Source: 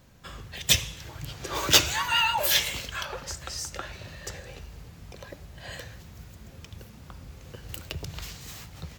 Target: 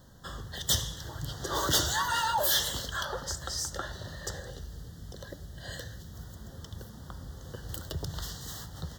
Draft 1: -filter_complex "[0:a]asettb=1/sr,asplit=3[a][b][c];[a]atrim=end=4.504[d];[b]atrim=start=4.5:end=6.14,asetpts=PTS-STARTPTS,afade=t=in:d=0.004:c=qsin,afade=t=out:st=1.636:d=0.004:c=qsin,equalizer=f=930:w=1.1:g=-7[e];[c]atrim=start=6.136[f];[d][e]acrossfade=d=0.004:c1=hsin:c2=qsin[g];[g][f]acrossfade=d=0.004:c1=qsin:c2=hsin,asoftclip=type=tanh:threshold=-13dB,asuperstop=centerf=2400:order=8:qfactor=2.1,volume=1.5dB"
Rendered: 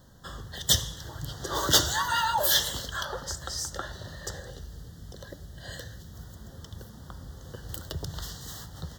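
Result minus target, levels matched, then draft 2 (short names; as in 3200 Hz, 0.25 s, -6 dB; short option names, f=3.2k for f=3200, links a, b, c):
soft clip: distortion -7 dB
-filter_complex "[0:a]asettb=1/sr,asplit=3[a][b][c];[a]atrim=end=4.504[d];[b]atrim=start=4.5:end=6.14,asetpts=PTS-STARTPTS,afade=t=in:d=0.004:c=qsin,afade=t=out:st=1.636:d=0.004:c=qsin,equalizer=f=930:w=1.1:g=-7[e];[c]atrim=start=6.136[f];[d][e]acrossfade=d=0.004:c1=hsin:c2=qsin[g];[g][f]acrossfade=d=0.004:c1=qsin:c2=hsin,asoftclip=type=tanh:threshold=-22dB,asuperstop=centerf=2400:order=8:qfactor=2.1,volume=1.5dB"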